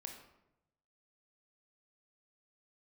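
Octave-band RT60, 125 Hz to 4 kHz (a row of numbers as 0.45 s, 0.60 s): 1.3 s, 1.0 s, 0.95 s, 0.80 s, 0.70 s, 0.55 s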